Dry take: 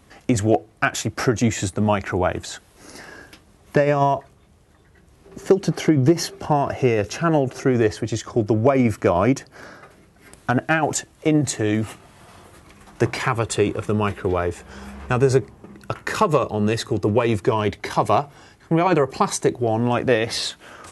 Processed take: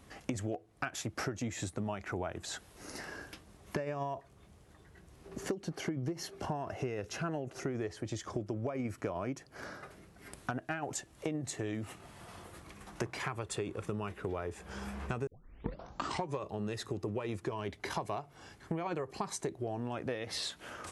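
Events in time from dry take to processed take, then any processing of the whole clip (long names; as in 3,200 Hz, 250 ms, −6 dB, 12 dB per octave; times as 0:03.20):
0:15.27: tape start 1.13 s
whole clip: downward compressor 6 to 1, threshold −30 dBFS; level −4.5 dB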